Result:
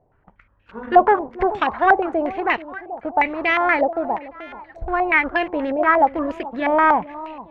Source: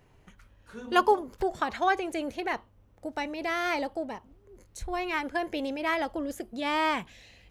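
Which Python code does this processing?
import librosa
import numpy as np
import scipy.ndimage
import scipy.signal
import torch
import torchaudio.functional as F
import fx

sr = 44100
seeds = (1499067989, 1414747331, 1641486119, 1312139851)

y = fx.leveller(x, sr, passes=2)
y = fx.echo_alternate(y, sr, ms=433, hz=930.0, feedback_pct=51, wet_db=-13.5)
y = fx.filter_held_lowpass(y, sr, hz=8.4, low_hz=690.0, high_hz=2600.0)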